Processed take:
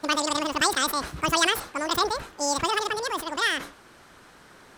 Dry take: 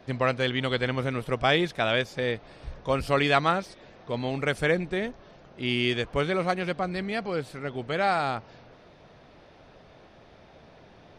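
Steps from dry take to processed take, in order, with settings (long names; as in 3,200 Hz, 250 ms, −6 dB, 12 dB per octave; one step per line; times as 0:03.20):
wrong playback speed 33 rpm record played at 78 rpm
level that may fall only so fast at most 130 dB per second
level +1 dB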